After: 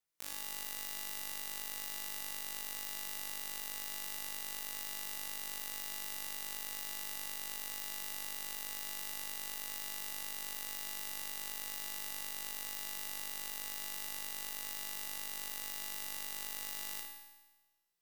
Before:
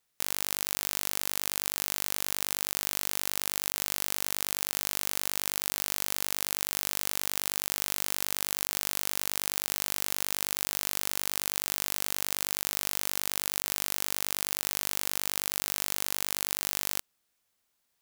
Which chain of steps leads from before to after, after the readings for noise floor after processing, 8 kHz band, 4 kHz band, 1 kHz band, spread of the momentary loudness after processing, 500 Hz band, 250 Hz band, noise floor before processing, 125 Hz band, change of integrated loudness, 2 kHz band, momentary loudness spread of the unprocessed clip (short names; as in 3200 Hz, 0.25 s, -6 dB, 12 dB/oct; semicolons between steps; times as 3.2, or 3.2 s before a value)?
-59 dBFS, -11.0 dB, -10.0 dB, -9.5 dB, 0 LU, -13.0 dB, -12.5 dB, -77 dBFS, -17.0 dB, -10.0 dB, -9.0 dB, 0 LU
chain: resonator 60 Hz, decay 1.2 s, harmonics all, mix 90%; flutter echo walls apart 9.6 m, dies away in 0.54 s; gain +1 dB